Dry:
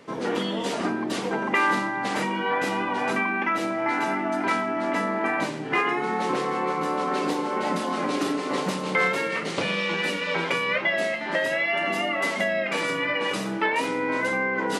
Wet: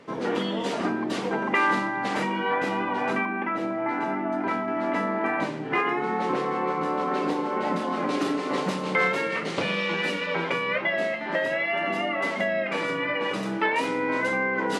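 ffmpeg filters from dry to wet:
ffmpeg -i in.wav -af "asetnsamples=nb_out_samples=441:pad=0,asendcmd='2.56 lowpass f 2600;3.25 lowpass f 1100;4.68 lowpass f 2400;8.09 lowpass f 4700;10.26 lowpass f 2400;13.43 lowpass f 6000',lowpass=frequency=4400:poles=1" out.wav

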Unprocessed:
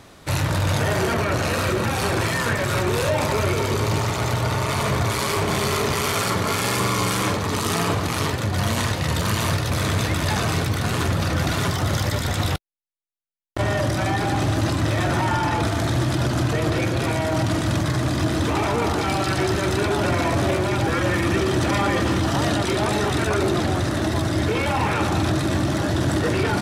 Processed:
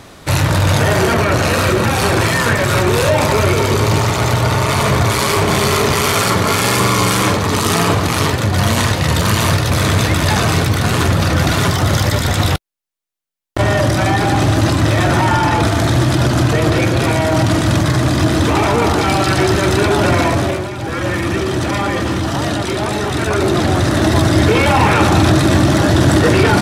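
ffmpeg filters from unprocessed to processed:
ffmpeg -i in.wav -af "volume=22dB,afade=type=out:start_time=20.2:duration=0.54:silence=0.251189,afade=type=in:start_time=20.74:duration=0.33:silence=0.446684,afade=type=in:start_time=23.07:duration=1.13:silence=0.446684" out.wav

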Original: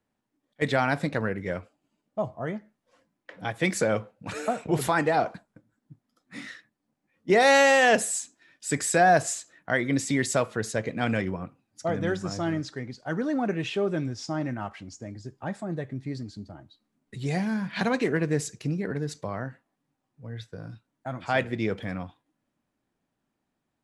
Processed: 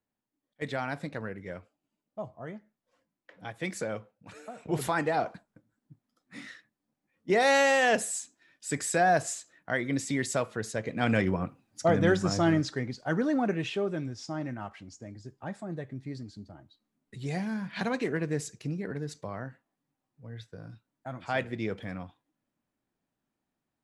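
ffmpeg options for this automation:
ffmpeg -i in.wav -af "volume=11.5dB,afade=type=out:start_time=3.83:duration=0.69:silence=0.421697,afade=type=in:start_time=4.52:duration=0.22:silence=0.251189,afade=type=in:start_time=10.83:duration=0.58:silence=0.375837,afade=type=out:start_time=12.51:duration=1.44:silence=0.354813" out.wav

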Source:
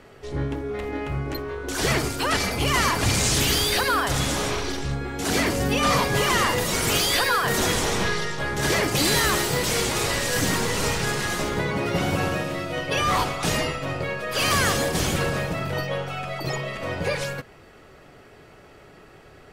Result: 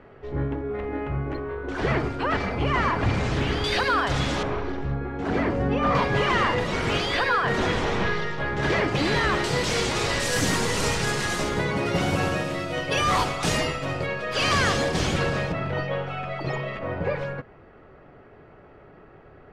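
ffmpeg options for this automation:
ffmpeg -i in.wav -af "asetnsamples=nb_out_samples=441:pad=0,asendcmd='3.64 lowpass f 3900;4.43 lowpass f 1500;5.95 lowpass f 2800;9.44 lowpass f 5800;10.2 lowpass f 9600;14.06 lowpass f 5400;15.52 lowpass f 2700;16.79 lowpass f 1600',lowpass=1900" out.wav

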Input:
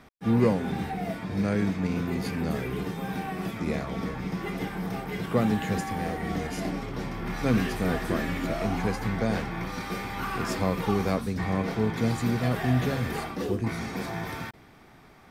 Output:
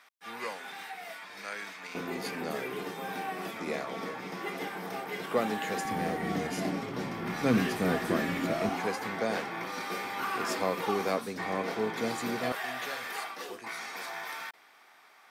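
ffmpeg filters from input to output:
ffmpeg -i in.wav -af "asetnsamples=nb_out_samples=441:pad=0,asendcmd='1.95 highpass f 390;5.85 highpass f 170;8.69 highpass f 360;12.52 highpass f 890',highpass=1200" out.wav

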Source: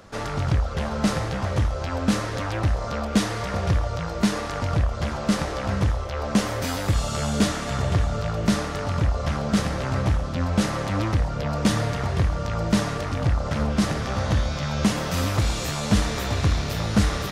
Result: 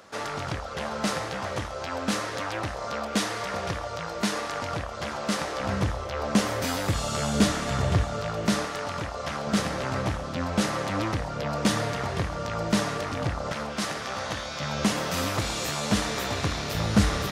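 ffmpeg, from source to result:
ffmpeg -i in.wav -af "asetnsamples=nb_out_samples=441:pad=0,asendcmd='5.6 highpass f 150;7.35 highpass f 63;8.03 highpass f 250;8.66 highpass f 520;9.47 highpass f 240;13.52 highpass f 760;14.6 highpass f 260;16.75 highpass f 61',highpass=frequency=460:poles=1" out.wav

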